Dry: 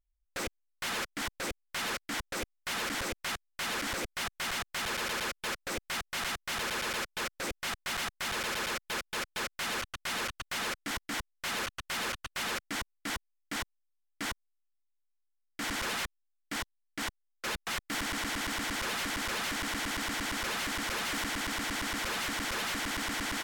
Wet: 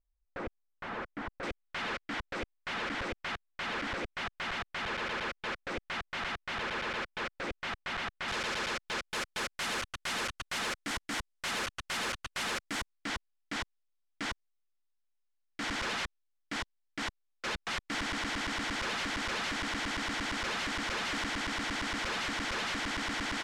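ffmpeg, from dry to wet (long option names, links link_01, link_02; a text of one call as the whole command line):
ffmpeg -i in.wav -af "asetnsamples=nb_out_samples=441:pad=0,asendcmd='1.43 lowpass f 3100;8.28 lowpass f 6100;9.1 lowpass f 10000;12.93 lowpass f 5800',lowpass=1400" out.wav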